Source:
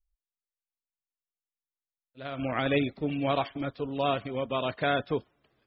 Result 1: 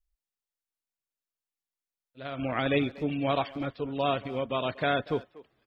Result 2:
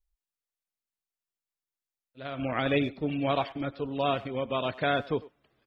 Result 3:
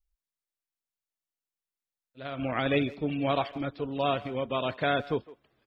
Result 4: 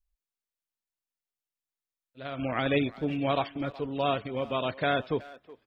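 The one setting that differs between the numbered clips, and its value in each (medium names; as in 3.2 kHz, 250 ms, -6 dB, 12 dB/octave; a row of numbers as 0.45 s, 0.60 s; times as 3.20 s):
speakerphone echo, time: 240 ms, 100 ms, 160 ms, 370 ms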